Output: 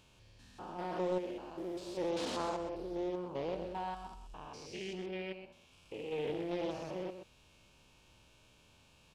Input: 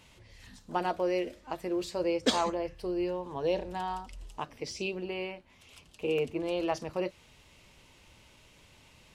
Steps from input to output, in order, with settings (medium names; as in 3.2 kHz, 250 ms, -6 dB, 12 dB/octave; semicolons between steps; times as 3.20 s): spectrogram pixelated in time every 200 ms; Butterworth band-stop 2 kHz, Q 5.9; delay 128 ms -9 dB; loudspeaker Doppler distortion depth 0.32 ms; trim -4.5 dB